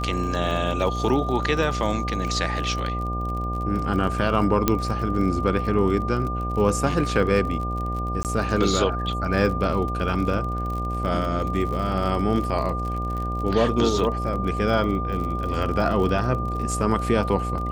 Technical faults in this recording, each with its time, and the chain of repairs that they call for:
buzz 60 Hz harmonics 13 -28 dBFS
crackle 44 per s -30 dBFS
whine 1.2 kHz -29 dBFS
4.68 s: pop -4 dBFS
8.23–8.25 s: dropout 18 ms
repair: de-click; band-stop 1.2 kHz, Q 30; de-hum 60 Hz, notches 13; interpolate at 8.23 s, 18 ms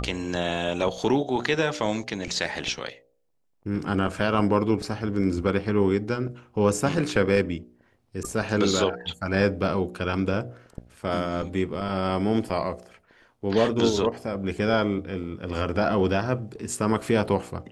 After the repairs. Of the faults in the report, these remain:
nothing left

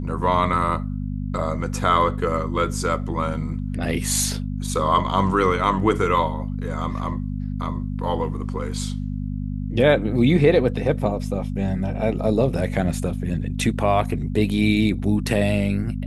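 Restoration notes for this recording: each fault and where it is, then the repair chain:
hum 50 Hz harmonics 5 -27 dBFS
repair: de-hum 50 Hz, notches 5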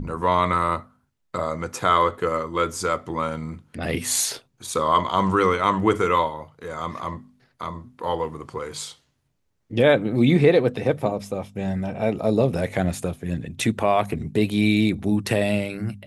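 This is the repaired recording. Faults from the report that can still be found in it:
nothing left

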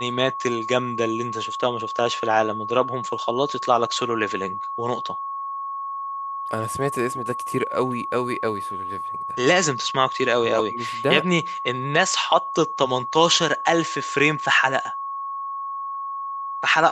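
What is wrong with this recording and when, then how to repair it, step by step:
whine 1.1 kHz -27 dBFS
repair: band-stop 1.1 kHz, Q 30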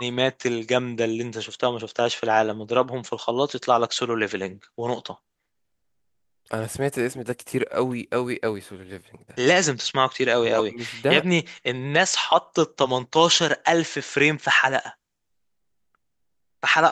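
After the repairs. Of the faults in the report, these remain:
nothing left

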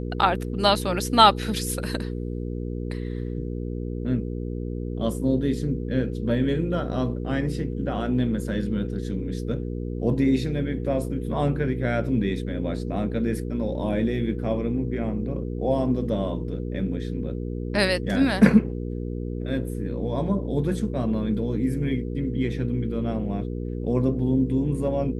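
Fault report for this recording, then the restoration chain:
hum 60 Hz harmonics 8 -30 dBFS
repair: de-hum 60 Hz, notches 8

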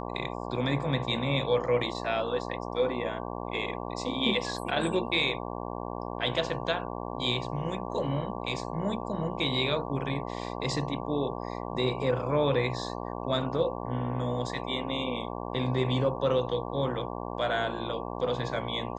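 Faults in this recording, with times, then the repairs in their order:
buzz 60 Hz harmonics 19 -36 dBFS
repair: de-hum 60 Hz, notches 19

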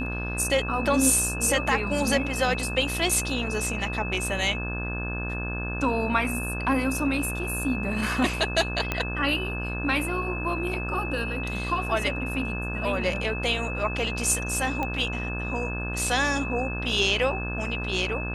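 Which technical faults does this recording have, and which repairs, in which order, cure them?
buzz 60 Hz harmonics 29 -32 dBFS
whine 2.6 kHz -33 dBFS
8.92 s: pop -11 dBFS
14.83 s: pop -16 dBFS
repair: de-click; band-stop 2.6 kHz, Q 30; de-hum 60 Hz, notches 29

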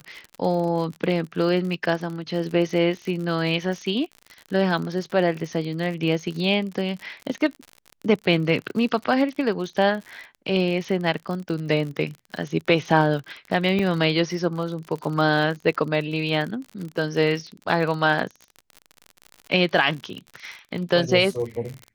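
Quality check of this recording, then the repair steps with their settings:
crackle 55 per s -30 dBFS
13.79 s: dropout 3.4 ms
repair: de-click; interpolate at 13.79 s, 3.4 ms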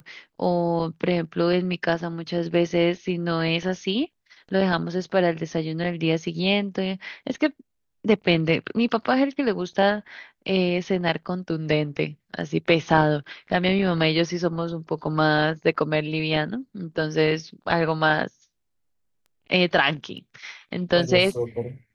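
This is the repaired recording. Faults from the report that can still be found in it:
nothing left

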